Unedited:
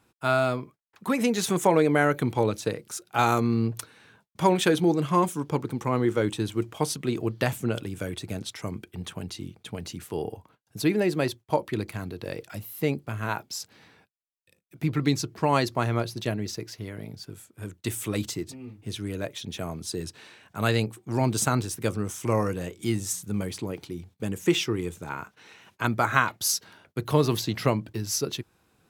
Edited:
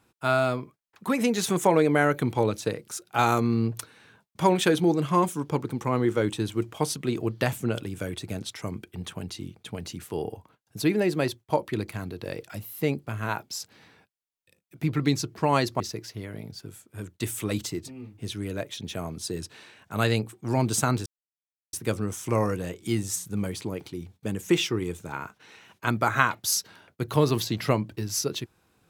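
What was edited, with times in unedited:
15.8–16.44 cut
21.7 insert silence 0.67 s

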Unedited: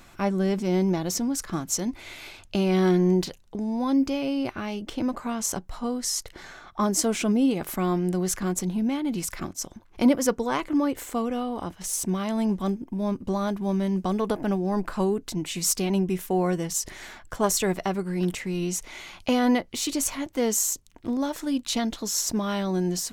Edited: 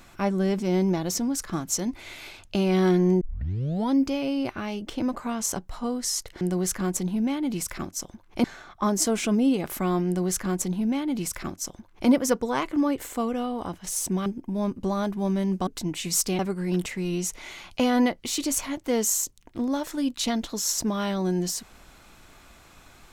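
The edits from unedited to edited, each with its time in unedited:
3.21 tape start 0.70 s
8.03–10.06 copy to 6.41
12.23–12.7 cut
14.11–15.18 cut
15.9–17.88 cut

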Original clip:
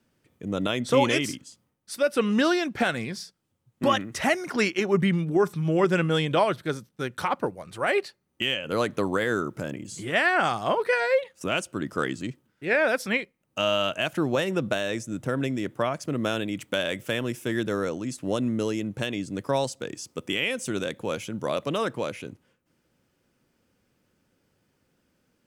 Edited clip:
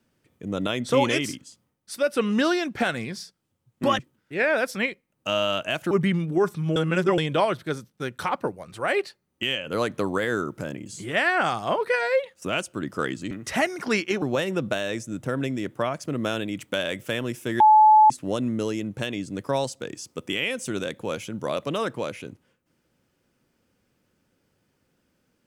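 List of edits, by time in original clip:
3.99–4.9 swap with 12.3–14.22
5.75–6.17 reverse
17.6–18.1 bleep 861 Hz -10.5 dBFS

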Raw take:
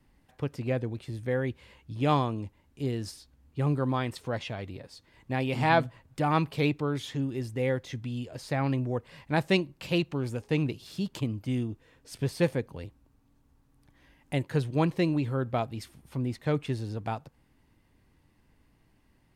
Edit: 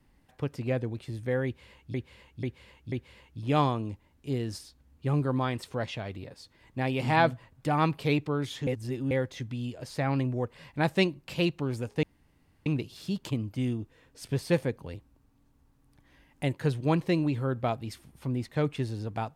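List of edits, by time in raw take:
1.45–1.94 loop, 4 plays
7.2–7.64 reverse
10.56 insert room tone 0.63 s

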